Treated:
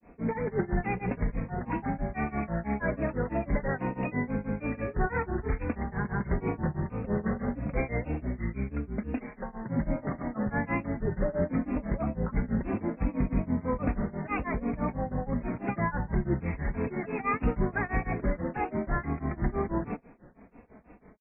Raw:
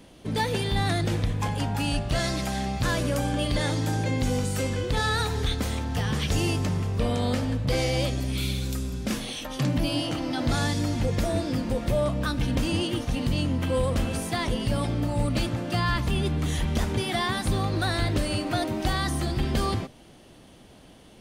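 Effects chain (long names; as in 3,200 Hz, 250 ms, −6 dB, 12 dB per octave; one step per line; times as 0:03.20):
Chebyshev low-pass filter 2,300 Hz, order 10
comb filter 4.7 ms, depth 57%
granular cloud 195 ms, grains 6.1 per second, pitch spread up and down by 3 semitones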